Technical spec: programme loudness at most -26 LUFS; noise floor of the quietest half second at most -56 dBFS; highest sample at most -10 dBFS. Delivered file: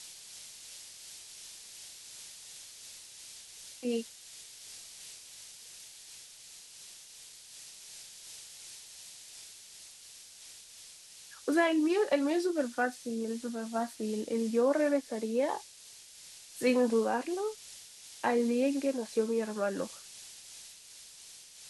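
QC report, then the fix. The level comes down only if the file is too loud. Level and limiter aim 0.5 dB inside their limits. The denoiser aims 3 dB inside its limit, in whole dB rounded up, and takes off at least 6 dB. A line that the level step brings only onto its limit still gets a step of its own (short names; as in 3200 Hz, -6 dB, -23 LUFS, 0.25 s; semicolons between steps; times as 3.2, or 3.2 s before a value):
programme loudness -31.5 LUFS: OK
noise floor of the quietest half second -53 dBFS: fail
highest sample -14.5 dBFS: OK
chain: denoiser 6 dB, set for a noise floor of -53 dBFS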